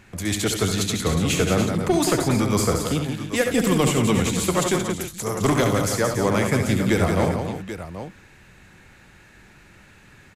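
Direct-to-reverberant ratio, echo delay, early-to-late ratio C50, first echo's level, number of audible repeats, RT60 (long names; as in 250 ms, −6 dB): no reverb audible, 68 ms, no reverb audible, −7.5 dB, 5, no reverb audible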